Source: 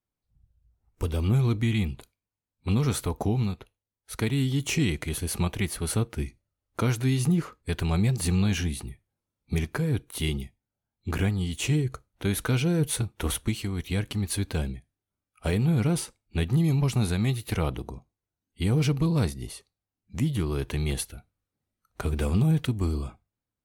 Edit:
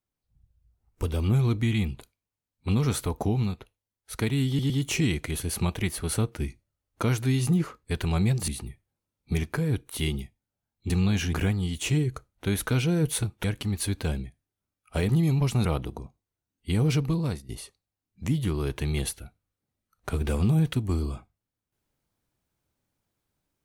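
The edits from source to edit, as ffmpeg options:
-filter_complex "[0:a]asplit=10[s0][s1][s2][s3][s4][s5][s6][s7][s8][s9];[s0]atrim=end=4.592[s10];[s1]atrim=start=4.478:end=4.592[s11];[s2]atrim=start=4.478:end=8.262[s12];[s3]atrim=start=8.688:end=11.112[s13];[s4]atrim=start=8.258:end=8.692[s14];[s5]atrim=start=11.108:end=13.222[s15];[s6]atrim=start=13.938:end=15.592[s16];[s7]atrim=start=16.498:end=17.062[s17];[s8]atrim=start=17.568:end=19.41,asetpts=PTS-STARTPTS,afade=t=out:st=1.192:d=0.65:c=qsin:silence=0.199526[s18];[s9]atrim=start=19.41,asetpts=PTS-STARTPTS,afade=t=in:d=0.004:c=hsin:silence=0.199526[s19];[s10][s11]acrossfade=d=0.004:c1=hsin:c2=hsin[s20];[s20][s12]acrossfade=d=0.004:c1=hsin:c2=hsin[s21];[s21][s13]acrossfade=d=0.004:c1=hsin:c2=hsin[s22];[s22][s14]acrossfade=d=0.004:c1=hsin:c2=hsin[s23];[s23][s15]acrossfade=d=0.004:c1=hsin:c2=hsin[s24];[s24][s16]acrossfade=d=0.004:c1=hsin:c2=hsin[s25];[s25][s17]acrossfade=d=0.004:c1=hsin:c2=hsin[s26];[s18][s19]concat=n=2:v=0:a=1[s27];[s26][s27]acrossfade=d=0.004:c1=hsin:c2=hsin"

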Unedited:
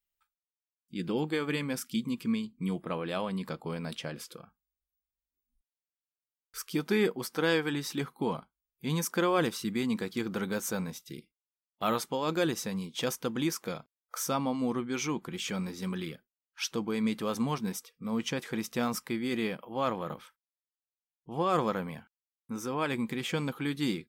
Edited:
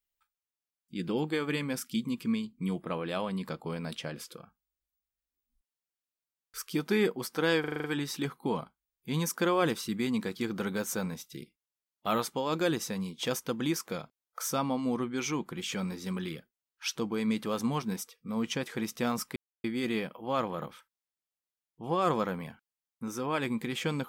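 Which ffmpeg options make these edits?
-filter_complex "[0:a]asplit=8[s0][s1][s2][s3][s4][s5][s6][s7];[s0]atrim=end=7.642[s8];[s1]atrim=start=7.598:end=7.642[s9];[s2]atrim=start=7.598:end=7.642[s10];[s3]atrim=start=7.598:end=7.642[s11];[s4]atrim=start=7.598:end=7.642[s12];[s5]atrim=start=7.598:end=7.642[s13];[s6]atrim=start=7.598:end=19.12,asetpts=PTS-STARTPTS,afade=t=out:st=11.518:d=0.004:c=hsin,apad=pad_dur=0.28[s14];[s7]atrim=start=19.12,asetpts=PTS-STARTPTS,afade=t=in:d=0.004:c=hsin[s15];[s8][s9]acrossfade=d=0.004:c1=hsin:c2=hsin[s16];[s16][s10]acrossfade=d=0.004:c1=hsin:c2=hsin[s17];[s17][s11]acrossfade=d=0.004:c1=hsin:c2=hsin[s18];[s18][s12]acrossfade=d=0.004:c1=hsin:c2=hsin[s19];[s19][s13]acrossfade=d=0.004:c1=hsin:c2=hsin[s20];[s14][s15]concat=n=2:v=0:a=1[s21];[s20][s21]acrossfade=d=0.004:c1=hsin:c2=hsin"

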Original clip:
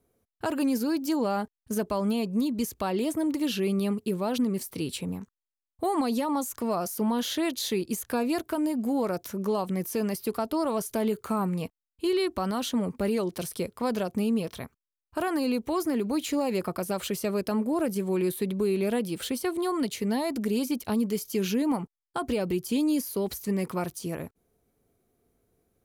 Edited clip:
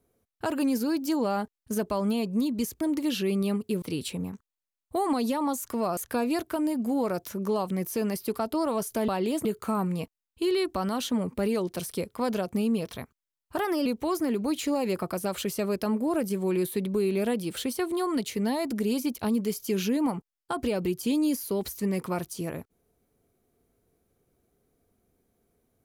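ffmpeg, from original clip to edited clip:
-filter_complex "[0:a]asplit=8[s0][s1][s2][s3][s4][s5][s6][s7];[s0]atrim=end=2.812[s8];[s1]atrim=start=3.178:end=4.192[s9];[s2]atrim=start=4.698:end=6.852[s10];[s3]atrim=start=7.958:end=11.072[s11];[s4]atrim=start=2.808:end=3.182[s12];[s5]atrim=start=11.068:end=15.194[s13];[s6]atrim=start=15.19:end=15.51,asetpts=PTS-STARTPTS,asetrate=49392,aresample=44100[s14];[s7]atrim=start=15.506[s15];[s8][s9]acrossfade=d=0.004:c1=hsin:c2=hsin[s16];[s16][s10]acrossfade=d=0.004:c1=hsin:c2=hsin[s17];[s17][s11]acrossfade=d=0.004:c1=hsin:c2=hsin[s18];[s18][s12]acrossfade=d=0.004:c1=hsin:c2=hsin[s19];[s19][s13]acrossfade=d=0.004:c1=hsin:c2=hsin[s20];[s20][s14]acrossfade=d=0.004:c1=hsin:c2=hsin[s21];[s21][s15]acrossfade=d=0.004:c1=hsin:c2=hsin"

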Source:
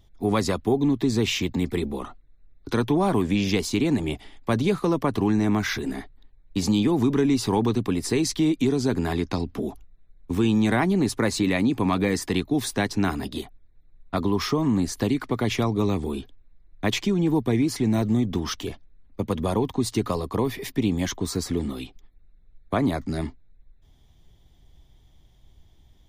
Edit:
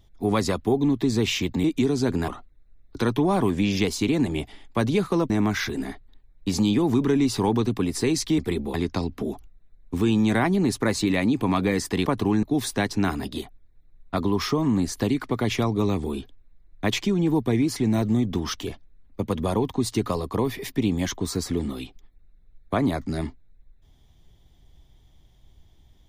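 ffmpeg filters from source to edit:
-filter_complex "[0:a]asplit=8[s0][s1][s2][s3][s4][s5][s6][s7];[s0]atrim=end=1.642[s8];[s1]atrim=start=8.468:end=9.112[s9];[s2]atrim=start=1.998:end=5.022[s10];[s3]atrim=start=5.388:end=8.472[s11];[s4]atrim=start=1.638:end=2.002[s12];[s5]atrim=start=9.108:end=12.432[s13];[s6]atrim=start=5.018:end=5.392[s14];[s7]atrim=start=12.428[s15];[s8][s9]acrossfade=d=0.004:c1=hsin:c2=hsin[s16];[s16][s10]acrossfade=d=0.004:c1=hsin:c2=hsin[s17];[s17][s11]acrossfade=d=0.004:c1=hsin:c2=hsin[s18];[s18][s12]acrossfade=d=0.004:c1=hsin:c2=hsin[s19];[s19][s13]acrossfade=d=0.004:c1=hsin:c2=hsin[s20];[s20][s14]acrossfade=d=0.004:c1=hsin:c2=hsin[s21];[s21][s15]acrossfade=d=0.004:c1=hsin:c2=hsin"

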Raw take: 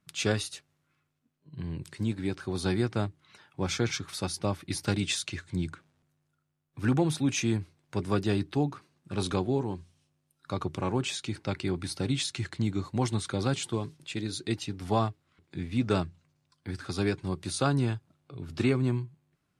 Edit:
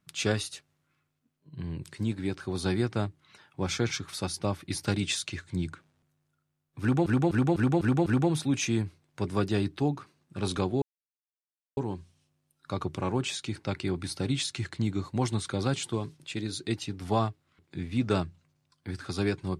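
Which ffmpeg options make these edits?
-filter_complex "[0:a]asplit=7[s0][s1][s2][s3][s4][s5][s6];[s0]atrim=end=7.062[s7];[s1]atrim=start=6.808:end=7.062[s8];[s2]atrim=start=6.808:end=7.062[s9];[s3]atrim=start=6.808:end=7.062[s10];[s4]atrim=start=6.808:end=7.062[s11];[s5]atrim=start=6.808:end=9.57,asetpts=PTS-STARTPTS,afade=t=out:st=2.758:d=0.004:c=hsin,apad=pad_dur=0.95[s12];[s6]atrim=start=9.57,asetpts=PTS-STARTPTS,afade=t=in:d=0.004:c=hsin[s13];[s7][s8]acrossfade=d=0.004:c1=hsin:c2=hsin[s14];[s14][s9]acrossfade=d=0.004:c1=hsin:c2=hsin[s15];[s15][s10]acrossfade=d=0.004:c1=hsin:c2=hsin[s16];[s16][s11]acrossfade=d=0.004:c1=hsin:c2=hsin[s17];[s12][s13]concat=n=2:v=0:a=1[s18];[s17][s18]acrossfade=d=0.004:c1=hsin:c2=hsin"

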